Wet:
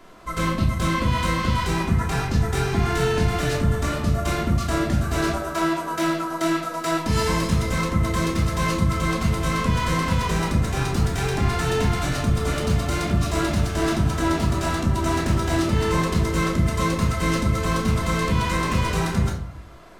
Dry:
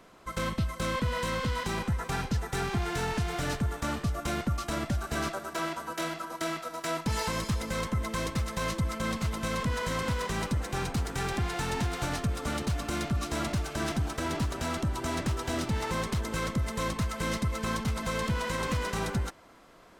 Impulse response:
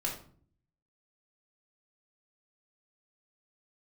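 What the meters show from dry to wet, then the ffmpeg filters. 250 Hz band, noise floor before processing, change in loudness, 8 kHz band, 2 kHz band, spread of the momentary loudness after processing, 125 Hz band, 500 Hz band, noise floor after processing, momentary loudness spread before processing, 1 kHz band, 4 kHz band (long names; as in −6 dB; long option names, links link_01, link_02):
+10.0 dB, −46 dBFS, +9.0 dB, +6.0 dB, +7.0 dB, 2 LU, +10.0 dB, +8.5 dB, −31 dBFS, 2 LU, +8.0 dB, +6.5 dB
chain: -filter_complex "[1:a]atrim=start_sample=2205[link_01];[0:a][link_01]afir=irnorm=-1:irlink=0,volume=4dB"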